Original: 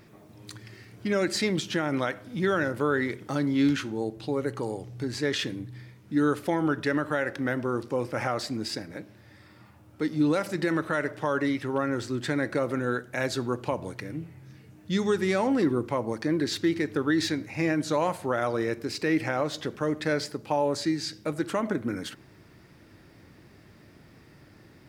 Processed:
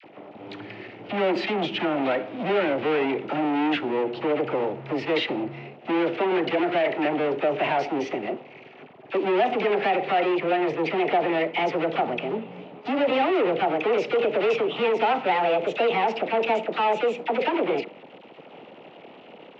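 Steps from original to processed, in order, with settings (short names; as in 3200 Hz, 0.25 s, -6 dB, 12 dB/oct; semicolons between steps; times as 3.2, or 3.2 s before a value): speed glide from 95% -> 159%; low shelf 490 Hz +9.5 dB; sample leveller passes 5; speaker cabinet 380–3000 Hz, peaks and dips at 760 Hz +3 dB, 1100 Hz -6 dB, 1600 Hz -7 dB, 2700 Hz +4 dB; dispersion lows, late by 45 ms, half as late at 950 Hz; gain -8 dB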